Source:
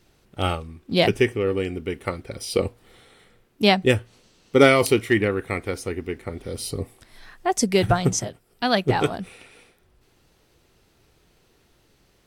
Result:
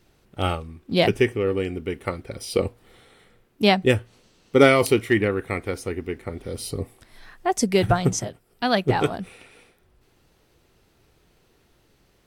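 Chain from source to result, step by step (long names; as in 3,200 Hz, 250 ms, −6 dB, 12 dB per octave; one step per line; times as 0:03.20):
parametric band 6,000 Hz −2.5 dB 2.2 octaves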